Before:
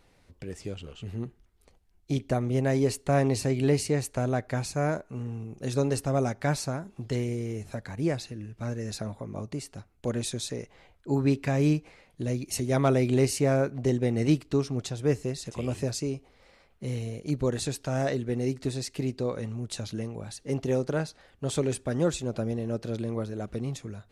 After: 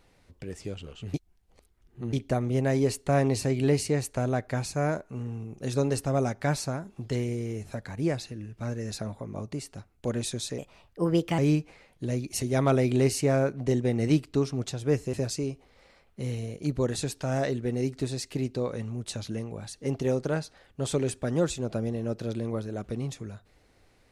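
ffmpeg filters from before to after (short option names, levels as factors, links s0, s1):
-filter_complex "[0:a]asplit=6[s0][s1][s2][s3][s4][s5];[s0]atrim=end=1.142[s6];[s1]atrim=start=1.138:end=2.132,asetpts=PTS-STARTPTS,areverse[s7];[s2]atrim=start=2.128:end=10.584[s8];[s3]atrim=start=10.58:end=11.56,asetpts=PTS-STARTPTS,asetrate=53802,aresample=44100[s9];[s4]atrim=start=11.556:end=15.312[s10];[s5]atrim=start=15.768[s11];[s6][s7]acrossfade=d=0.004:c1=hsin:c2=hsin[s12];[s12][s8]acrossfade=d=0.004:c1=hsin:c2=hsin[s13];[s13][s9]acrossfade=d=0.004:c1=hsin:c2=hsin[s14];[s14][s10]acrossfade=d=0.004:c1=hsin:c2=hsin[s15];[s15][s11]acrossfade=d=0.004:c1=hsin:c2=hsin"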